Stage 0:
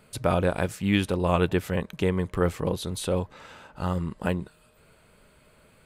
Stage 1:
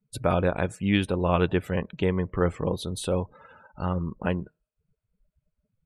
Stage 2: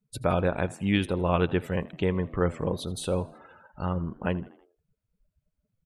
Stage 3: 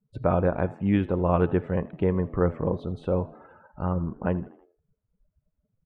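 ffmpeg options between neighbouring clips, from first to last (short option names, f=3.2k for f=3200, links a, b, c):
-af "afftdn=nr=36:nf=-43"
-filter_complex "[0:a]asplit=5[a][b][c][d][e];[b]adelay=80,afreqshift=66,volume=-21dB[f];[c]adelay=160,afreqshift=132,volume=-26.8dB[g];[d]adelay=240,afreqshift=198,volume=-32.7dB[h];[e]adelay=320,afreqshift=264,volume=-38.5dB[i];[a][f][g][h][i]amix=inputs=5:normalize=0,volume=-1.5dB"
-af "lowpass=1.3k,bandreject=f=427.4:t=h:w=4,bandreject=f=854.8:t=h:w=4,bandreject=f=1.2822k:t=h:w=4,bandreject=f=1.7096k:t=h:w=4,bandreject=f=2.137k:t=h:w=4,bandreject=f=2.5644k:t=h:w=4,bandreject=f=2.9918k:t=h:w=4,bandreject=f=3.4192k:t=h:w=4,bandreject=f=3.8466k:t=h:w=4,bandreject=f=4.274k:t=h:w=4,bandreject=f=4.7014k:t=h:w=4,bandreject=f=5.1288k:t=h:w=4,bandreject=f=5.5562k:t=h:w=4,bandreject=f=5.9836k:t=h:w=4,bandreject=f=6.411k:t=h:w=4,bandreject=f=6.8384k:t=h:w=4,bandreject=f=7.2658k:t=h:w=4,bandreject=f=7.6932k:t=h:w=4,bandreject=f=8.1206k:t=h:w=4,bandreject=f=8.548k:t=h:w=4,bandreject=f=8.9754k:t=h:w=4,bandreject=f=9.4028k:t=h:w=4,bandreject=f=9.8302k:t=h:w=4,bandreject=f=10.2576k:t=h:w=4,bandreject=f=10.685k:t=h:w=4,bandreject=f=11.1124k:t=h:w=4,bandreject=f=11.5398k:t=h:w=4,bandreject=f=11.9672k:t=h:w=4,bandreject=f=12.3946k:t=h:w=4,bandreject=f=12.822k:t=h:w=4,bandreject=f=13.2494k:t=h:w=4,bandreject=f=13.6768k:t=h:w=4,bandreject=f=14.1042k:t=h:w=4,bandreject=f=14.5316k:t=h:w=4,bandreject=f=14.959k:t=h:w=4,bandreject=f=15.3864k:t=h:w=4,bandreject=f=15.8138k:t=h:w=4,bandreject=f=16.2412k:t=h:w=4,volume=2.5dB"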